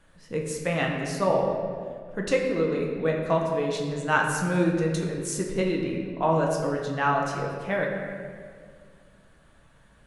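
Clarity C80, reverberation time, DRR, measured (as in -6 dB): 4.5 dB, 2.0 s, -1.0 dB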